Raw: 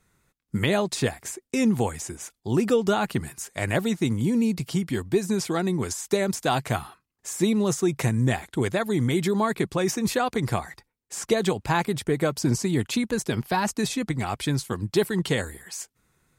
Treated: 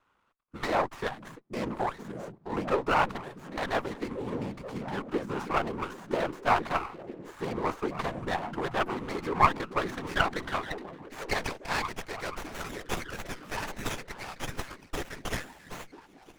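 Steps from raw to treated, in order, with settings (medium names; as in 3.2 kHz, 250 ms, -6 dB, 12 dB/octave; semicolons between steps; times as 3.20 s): band-pass sweep 1.1 kHz -> 4 kHz, 9.45–12.78 s; whisper effect; on a send: repeats whose band climbs or falls 481 ms, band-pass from 150 Hz, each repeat 0.7 oct, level -3 dB; on the sum: sliding maximum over 9 samples; trim +7 dB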